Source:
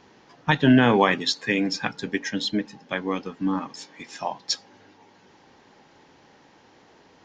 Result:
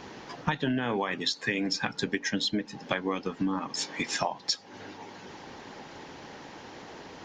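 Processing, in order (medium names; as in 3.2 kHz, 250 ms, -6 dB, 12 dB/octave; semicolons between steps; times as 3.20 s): harmonic-percussive split percussive +4 dB; in parallel at +3 dB: peak limiter -10.5 dBFS, peak gain reduction 8.5 dB; on the sum: compression 10:1, threshold -26 dBFS, peak gain reduction 20 dB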